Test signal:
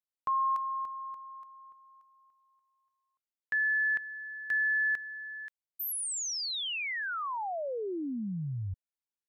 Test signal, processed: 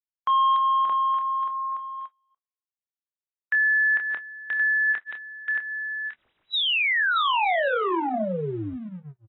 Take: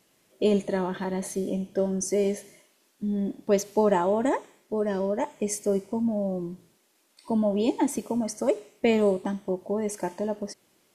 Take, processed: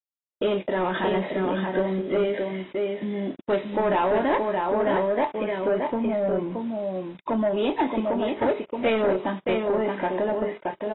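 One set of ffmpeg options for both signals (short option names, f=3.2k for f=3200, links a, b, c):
-filter_complex "[0:a]acompressor=threshold=-38dB:ratio=2:attack=0.96:release=190:knee=1:detection=rms,aresample=16000,aresample=44100,highpass=f=690:p=1,aecho=1:1:624:0.562,dynaudnorm=f=130:g=3:m=15dB,aeval=exprs='sgn(val(0))*max(abs(val(0))-0.00141,0)':c=same,aemphasis=mode=reproduction:type=50fm,asplit=2[a][b];[b]adelay=27,volume=-10.5dB[c];[a][c]amix=inputs=2:normalize=0,asoftclip=type=tanh:threshold=-20dB,agate=range=-57dB:threshold=-43dB:ratio=16:release=57:detection=peak,volume=3.5dB" -ar 22050 -c:a aac -b:a 16k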